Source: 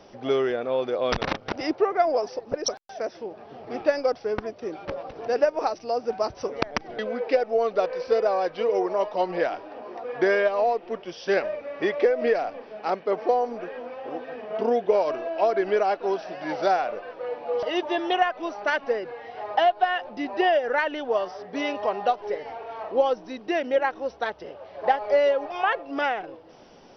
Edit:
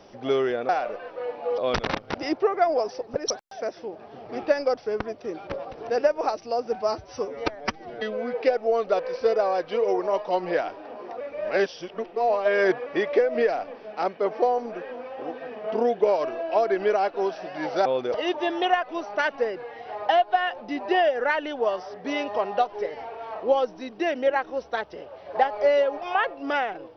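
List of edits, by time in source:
0.69–0.96 s: swap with 16.72–17.61 s
6.17–7.20 s: stretch 1.5×
10.07–11.73 s: reverse

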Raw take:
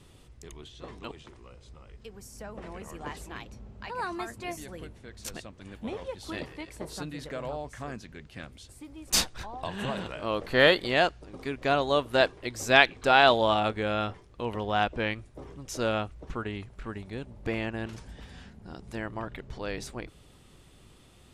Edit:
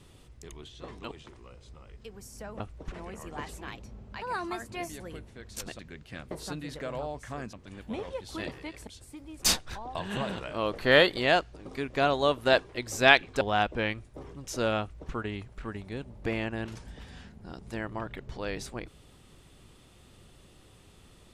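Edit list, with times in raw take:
5.47–6.81 s: swap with 8.03–8.55 s
13.09–14.62 s: delete
16.02–16.34 s: copy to 2.60 s

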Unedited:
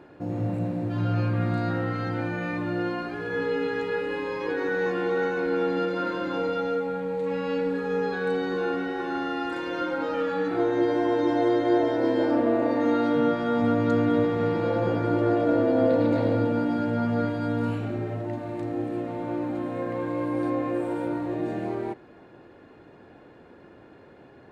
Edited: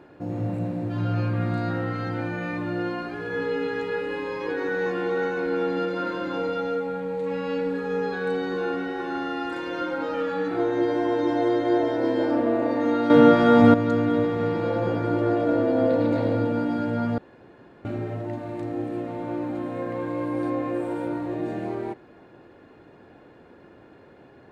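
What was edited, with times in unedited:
13.10–13.74 s: gain +9 dB
17.18–17.85 s: room tone

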